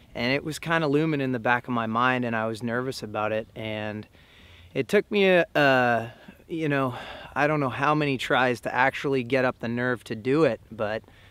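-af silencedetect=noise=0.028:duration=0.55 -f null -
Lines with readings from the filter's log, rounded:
silence_start: 4.03
silence_end: 4.75 | silence_duration: 0.73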